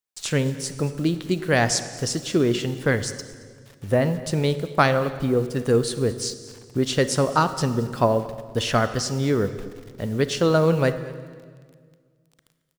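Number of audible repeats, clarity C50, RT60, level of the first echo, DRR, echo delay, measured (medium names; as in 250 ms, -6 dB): 1, 12.0 dB, 1.8 s, -21.5 dB, 11.0 dB, 223 ms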